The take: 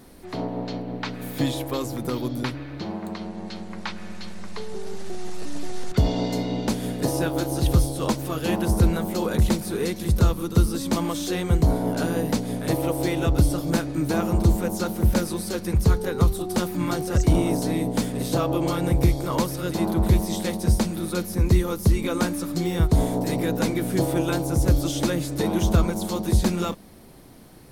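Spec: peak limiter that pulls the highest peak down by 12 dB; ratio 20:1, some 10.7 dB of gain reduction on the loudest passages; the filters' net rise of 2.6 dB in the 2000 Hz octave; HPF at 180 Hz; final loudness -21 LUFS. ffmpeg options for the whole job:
-af "highpass=180,equalizer=f=2k:t=o:g=3.5,acompressor=threshold=-29dB:ratio=20,volume=15.5dB,alimiter=limit=-11dB:level=0:latency=1"

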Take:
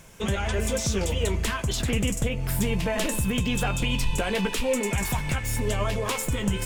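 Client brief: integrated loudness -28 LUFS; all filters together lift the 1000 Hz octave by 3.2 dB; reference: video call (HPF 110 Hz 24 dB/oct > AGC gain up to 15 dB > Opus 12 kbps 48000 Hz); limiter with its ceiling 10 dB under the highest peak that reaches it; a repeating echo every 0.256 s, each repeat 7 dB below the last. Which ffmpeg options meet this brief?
-af "equalizer=f=1k:t=o:g=4,alimiter=limit=-22.5dB:level=0:latency=1,highpass=f=110:w=0.5412,highpass=f=110:w=1.3066,aecho=1:1:256|512|768|1024|1280:0.447|0.201|0.0905|0.0407|0.0183,dynaudnorm=m=15dB,volume=4.5dB" -ar 48000 -c:a libopus -b:a 12k

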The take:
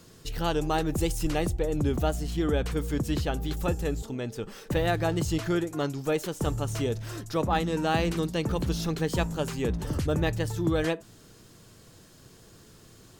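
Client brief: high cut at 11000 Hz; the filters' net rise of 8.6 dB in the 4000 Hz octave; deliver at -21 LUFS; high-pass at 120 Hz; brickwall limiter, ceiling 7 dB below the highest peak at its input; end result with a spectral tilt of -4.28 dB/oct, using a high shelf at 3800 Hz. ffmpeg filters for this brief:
-af "highpass=120,lowpass=11k,highshelf=f=3.8k:g=5,equalizer=f=4k:t=o:g=8,volume=8.5dB,alimiter=limit=-8dB:level=0:latency=1"

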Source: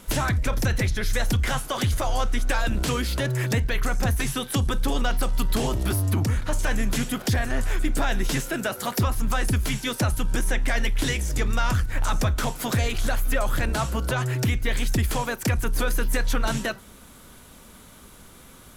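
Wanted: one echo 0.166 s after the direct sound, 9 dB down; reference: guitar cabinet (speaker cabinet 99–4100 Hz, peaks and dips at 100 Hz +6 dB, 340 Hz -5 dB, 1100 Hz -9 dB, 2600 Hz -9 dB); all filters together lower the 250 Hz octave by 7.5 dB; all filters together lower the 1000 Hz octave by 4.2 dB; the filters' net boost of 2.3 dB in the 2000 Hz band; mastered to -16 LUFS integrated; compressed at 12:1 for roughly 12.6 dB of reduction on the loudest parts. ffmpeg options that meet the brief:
-af "equalizer=f=250:t=o:g=-8.5,equalizer=f=1k:t=o:g=-3.5,equalizer=f=2k:t=o:g=7,acompressor=threshold=-32dB:ratio=12,highpass=99,equalizer=f=100:t=q:w=4:g=6,equalizer=f=340:t=q:w=4:g=-5,equalizer=f=1.1k:t=q:w=4:g=-9,equalizer=f=2.6k:t=q:w=4:g=-9,lowpass=f=4.1k:w=0.5412,lowpass=f=4.1k:w=1.3066,aecho=1:1:166:0.355,volume=23.5dB"

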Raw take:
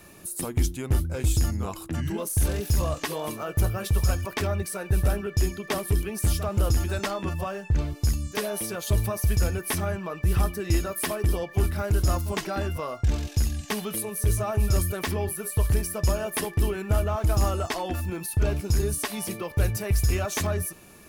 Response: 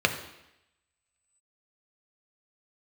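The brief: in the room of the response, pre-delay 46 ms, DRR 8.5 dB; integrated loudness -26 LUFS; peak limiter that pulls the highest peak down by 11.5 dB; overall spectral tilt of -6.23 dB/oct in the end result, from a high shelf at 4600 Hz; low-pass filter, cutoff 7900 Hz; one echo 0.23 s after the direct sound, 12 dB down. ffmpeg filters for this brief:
-filter_complex "[0:a]lowpass=7.9k,highshelf=f=4.6k:g=-8.5,alimiter=limit=-24dB:level=0:latency=1,aecho=1:1:230:0.251,asplit=2[a][b];[1:a]atrim=start_sample=2205,adelay=46[c];[b][c]afir=irnorm=-1:irlink=0,volume=-23dB[d];[a][d]amix=inputs=2:normalize=0,volume=6.5dB"

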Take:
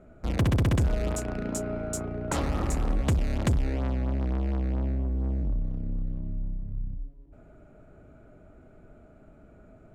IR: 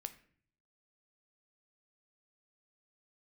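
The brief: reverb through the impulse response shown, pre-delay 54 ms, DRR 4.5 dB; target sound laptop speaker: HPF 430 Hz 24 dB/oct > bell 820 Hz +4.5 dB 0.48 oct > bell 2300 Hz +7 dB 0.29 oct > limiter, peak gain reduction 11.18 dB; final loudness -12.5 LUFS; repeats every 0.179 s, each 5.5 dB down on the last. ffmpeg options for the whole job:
-filter_complex "[0:a]aecho=1:1:179|358|537|716|895|1074|1253:0.531|0.281|0.149|0.079|0.0419|0.0222|0.0118,asplit=2[a][b];[1:a]atrim=start_sample=2205,adelay=54[c];[b][c]afir=irnorm=-1:irlink=0,volume=-1dB[d];[a][d]amix=inputs=2:normalize=0,highpass=f=430:w=0.5412,highpass=f=430:w=1.3066,equalizer=f=820:t=o:w=0.48:g=4.5,equalizer=f=2.3k:t=o:w=0.29:g=7,volume=22.5dB,alimiter=limit=-1.5dB:level=0:latency=1"

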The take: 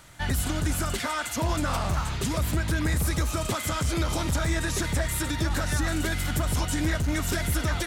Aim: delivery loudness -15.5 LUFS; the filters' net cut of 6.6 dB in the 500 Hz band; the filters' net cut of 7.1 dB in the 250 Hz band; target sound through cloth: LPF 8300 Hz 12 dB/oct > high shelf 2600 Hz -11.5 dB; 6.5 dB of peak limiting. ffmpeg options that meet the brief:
-af "equalizer=f=250:t=o:g=-8,equalizer=f=500:t=o:g=-6.5,alimiter=limit=-23dB:level=0:latency=1,lowpass=8.3k,highshelf=f=2.6k:g=-11.5,volume=18.5dB"

